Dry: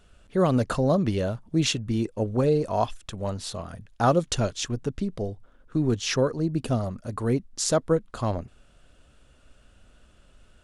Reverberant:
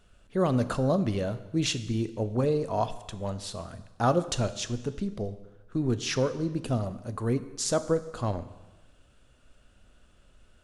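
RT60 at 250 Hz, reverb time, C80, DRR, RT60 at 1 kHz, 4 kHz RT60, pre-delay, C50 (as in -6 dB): 1.1 s, 1.1 s, 15.5 dB, 11.5 dB, 1.1 s, 1.1 s, 8 ms, 14.0 dB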